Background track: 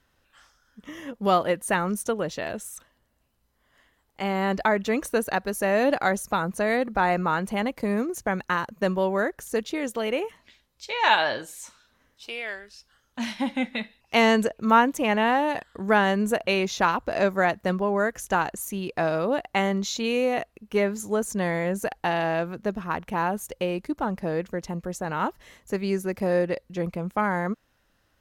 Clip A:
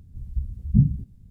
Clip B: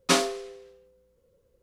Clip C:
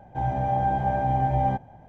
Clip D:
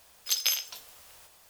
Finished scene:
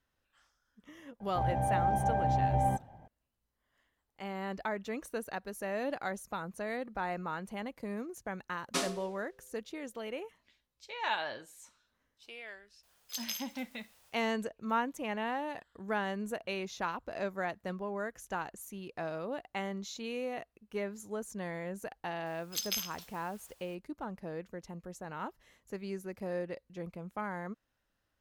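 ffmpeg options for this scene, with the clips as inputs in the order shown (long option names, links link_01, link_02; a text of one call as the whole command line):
ffmpeg -i bed.wav -i cue0.wav -i cue1.wav -i cue2.wav -i cue3.wav -filter_complex "[4:a]asplit=2[link_01][link_02];[0:a]volume=-13.5dB[link_03];[2:a]highshelf=frequency=8200:gain=5.5[link_04];[3:a]atrim=end=1.88,asetpts=PTS-STARTPTS,volume=-5.5dB,afade=type=in:duration=0.004:curve=hsin,afade=type=out:start_time=1.876:duration=0.004:curve=hsin,adelay=1200[link_05];[link_04]atrim=end=1.62,asetpts=PTS-STARTPTS,volume=-12dB,afade=type=in:duration=0.004:curve=hsin,afade=type=out:start_time=1.616:duration=0.004:curve=hsin,adelay=8650[link_06];[link_01]atrim=end=1.49,asetpts=PTS-STARTPTS,volume=-12dB,afade=type=in:duration=0.004:curve=hsin,afade=type=out:start_time=1.486:duration=0.004:curve=hsin,adelay=12830[link_07];[link_02]atrim=end=1.49,asetpts=PTS-STARTPTS,volume=-8dB,afade=type=in:duration=0.004:curve=hsin,afade=type=out:start_time=1.486:duration=0.004:curve=hsin,adelay=22260[link_08];[link_03][link_05][link_06][link_07][link_08]amix=inputs=5:normalize=0" out.wav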